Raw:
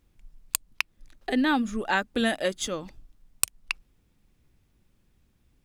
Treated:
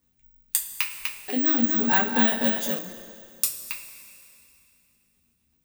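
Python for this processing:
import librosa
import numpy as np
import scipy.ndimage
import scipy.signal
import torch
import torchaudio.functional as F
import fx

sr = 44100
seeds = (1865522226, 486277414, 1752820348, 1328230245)

y = fx.highpass(x, sr, hz=67.0, slope=6)
y = fx.high_shelf(y, sr, hz=7700.0, db=10.0)
y = fx.rider(y, sr, range_db=10, speed_s=2.0)
y = fx.rotary_switch(y, sr, hz=0.85, then_hz=8.0, switch_at_s=3.21)
y = (np.kron(y[::2], np.eye(2)[0]) * 2)[:len(y)]
y = fx.rev_double_slope(y, sr, seeds[0], early_s=0.23, late_s=2.7, knee_db=-17, drr_db=-2.5)
y = fx.echo_crushed(y, sr, ms=248, feedback_pct=35, bits=6, wet_db=-3.5, at=(0.66, 2.79))
y = F.gain(torch.from_numpy(y), -5.0).numpy()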